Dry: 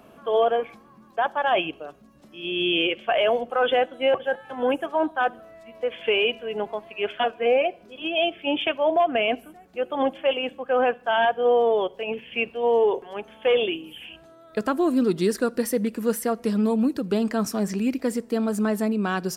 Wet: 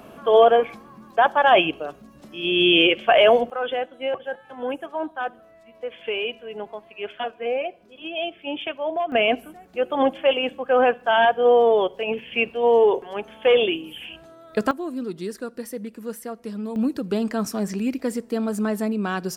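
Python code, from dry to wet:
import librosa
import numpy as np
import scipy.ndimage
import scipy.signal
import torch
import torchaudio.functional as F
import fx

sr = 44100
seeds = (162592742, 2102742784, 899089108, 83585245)

y = fx.gain(x, sr, db=fx.steps((0.0, 6.5), (3.5, -5.0), (9.12, 3.5), (14.71, -8.5), (16.76, -0.5)))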